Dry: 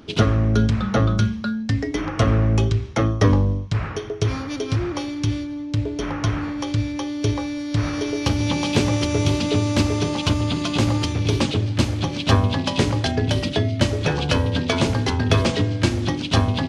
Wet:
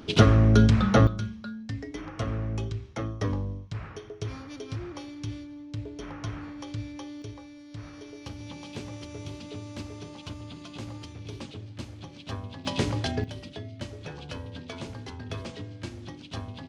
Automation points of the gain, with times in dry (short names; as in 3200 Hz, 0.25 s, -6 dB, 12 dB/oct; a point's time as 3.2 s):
0 dB
from 1.07 s -13 dB
from 7.22 s -19.5 dB
from 12.65 s -7.5 dB
from 13.24 s -18.5 dB